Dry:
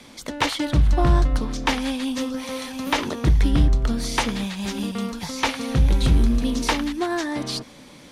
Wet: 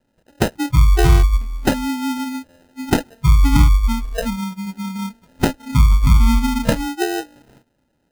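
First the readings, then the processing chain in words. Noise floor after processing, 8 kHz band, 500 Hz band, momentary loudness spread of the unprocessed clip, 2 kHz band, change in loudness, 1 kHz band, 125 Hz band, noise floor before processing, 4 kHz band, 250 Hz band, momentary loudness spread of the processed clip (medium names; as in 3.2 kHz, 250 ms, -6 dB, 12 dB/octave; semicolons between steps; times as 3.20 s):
-67 dBFS, +1.5 dB, +3.0 dB, 9 LU, +0.5 dB, +4.5 dB, +2.0 dB, +5.5 dB, -46 dBFS, -2.0 dB, +3.0 dB, 13 LU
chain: sample-and-hold 39×; spectral noise reduction 27 dB; trim +5.5 dB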